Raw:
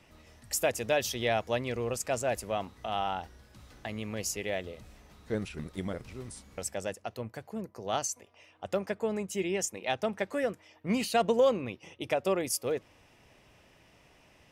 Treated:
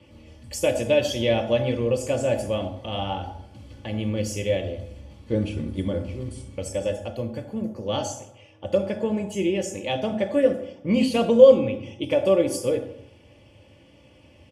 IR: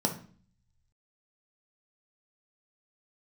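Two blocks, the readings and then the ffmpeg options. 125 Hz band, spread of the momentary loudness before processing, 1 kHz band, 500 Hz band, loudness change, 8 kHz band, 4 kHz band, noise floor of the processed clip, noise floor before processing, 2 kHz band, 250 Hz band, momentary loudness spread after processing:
+11.0 dB, 13 LU, +0.5 dB, +10.0 dB, +8.5 dB, -1.0 dB, +6.0 dB, -53 dBFS, -62 dBFS, +2.0 dB, +10.5 dB, 13 LU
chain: -filter_complex "[0:a]aecho=1:1:3.5:0.51[a];[1:a]atrim=start_sample=2205,asetrate=25137,aresample=44100[b];[a][b]afir=irnorm=-1:irlink=0,volume=-8dB"

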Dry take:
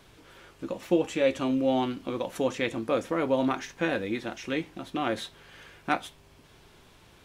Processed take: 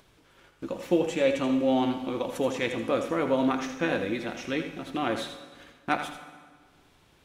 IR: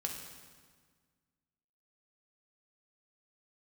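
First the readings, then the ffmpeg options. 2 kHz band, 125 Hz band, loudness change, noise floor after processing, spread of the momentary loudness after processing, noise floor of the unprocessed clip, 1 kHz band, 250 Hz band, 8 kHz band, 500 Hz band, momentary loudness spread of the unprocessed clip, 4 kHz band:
+1.0 dB, +0.5 dB, +1.0 dB, -61 dBFS, 14 LU, -57 dBFS, +1.0 dB, +1.5 dB, +1.0 dB, +0.5 dB, 11 LU, +1.0 dB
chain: -filter_complex "[0:a]agate=range=-22dB:threshold=-48dB:ratio=16:detection=peak,acompressor=mode=upward:threshold=-47dB:ratio=2.5,asplit=2[a][b];[1:a]atrim=start_sample=2205,lowshelf=f=150:g=-8.5,adelay=81[c];[b][c]afir=irnorm=-1:irlink=0,volume=-7.5dB[d];[a][d]amix=inputs=2:normalize=0"

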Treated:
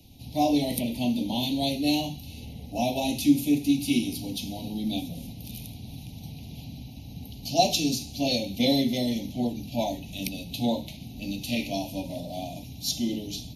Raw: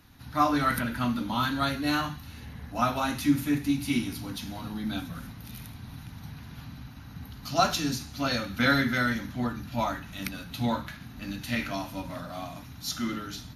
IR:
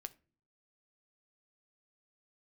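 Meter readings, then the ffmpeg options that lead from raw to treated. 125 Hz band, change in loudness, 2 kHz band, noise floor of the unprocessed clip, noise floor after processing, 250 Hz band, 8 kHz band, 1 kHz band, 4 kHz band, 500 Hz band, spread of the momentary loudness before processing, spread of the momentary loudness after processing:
-0.5 dB, +1.5 dB, -8.5 dB, -45 dBFS, -43 dBFS, +3.5 dB, +4.5 dB, -3.0 dB, +4.5 dB, +4.0 dB, 18 LU, 18 LU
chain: -filter_complex "[0:a]acrossover=split=180|1600[a][b][c];[a]acompressor=threshold=-44dB:ratio=6[d];[d][b][c]amix=inputs=3:normalize=0,asuperstop=centerf=1400:order=8:qfactor=0.8,volume=4.5dB"

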